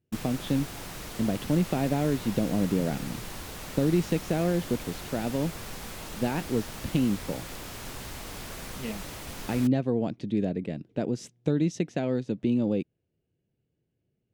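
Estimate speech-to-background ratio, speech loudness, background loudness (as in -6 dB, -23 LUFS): 10.5 dB, -29.0 LUFS, -39.5 LUFS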